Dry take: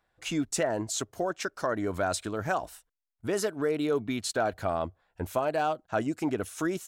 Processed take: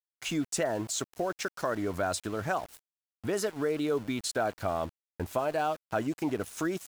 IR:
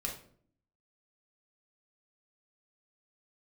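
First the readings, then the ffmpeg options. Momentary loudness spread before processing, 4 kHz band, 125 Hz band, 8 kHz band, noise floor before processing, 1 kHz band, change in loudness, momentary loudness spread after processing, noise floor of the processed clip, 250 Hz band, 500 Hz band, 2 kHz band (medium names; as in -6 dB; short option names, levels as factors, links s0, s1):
5 LU, -0.5 dB, -1.0 dB, -1.0 dB, -79 dBFS, -1.5 dB, -1.5 dB, 4 LU, under -85 dBFS, -1.5 dB, -1.5 dB, -1.5 dB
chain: -filter_complex "[0:a]asplit=2[s0][s1];[s1]acompressor=threshold=0.01:ratio=6,volume=1.19[s2];[s0][s2]amix=inputs=2:normalize=0,aeval=exprs='val(0)*gte(abs(val(0)),0.0112)':c=same,volume=0.668"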